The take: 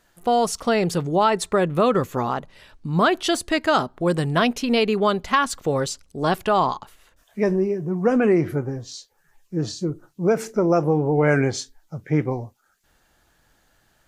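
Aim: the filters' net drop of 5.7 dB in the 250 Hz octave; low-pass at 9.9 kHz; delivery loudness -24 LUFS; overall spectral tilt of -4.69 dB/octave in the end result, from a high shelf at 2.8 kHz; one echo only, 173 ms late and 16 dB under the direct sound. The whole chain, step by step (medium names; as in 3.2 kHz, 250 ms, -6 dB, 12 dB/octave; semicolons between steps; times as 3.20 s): low-pass 9.9 kHz; peaking EQ 250 Hz -8.5 dB; treble shelf 2.8 kHz -7 dB; delay 173 ms -16 dB; trim +0.5 dB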